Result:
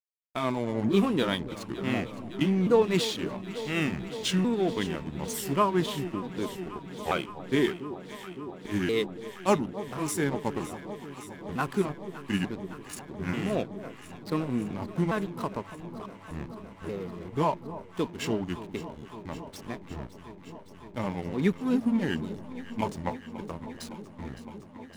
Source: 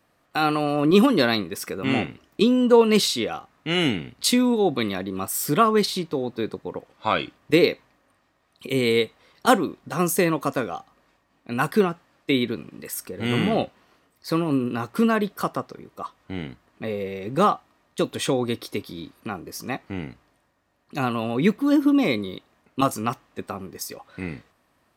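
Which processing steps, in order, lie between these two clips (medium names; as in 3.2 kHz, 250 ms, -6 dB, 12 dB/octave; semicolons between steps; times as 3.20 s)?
sawtooth pitch modulation -5.5 st, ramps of 889 ms; hysteresis with a dead band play -28.5 dBFS; echo whose repeats swap between lows and highs 281 ms, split 970 Hz, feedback 90%, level -13.5 dB; trim -5.5 dB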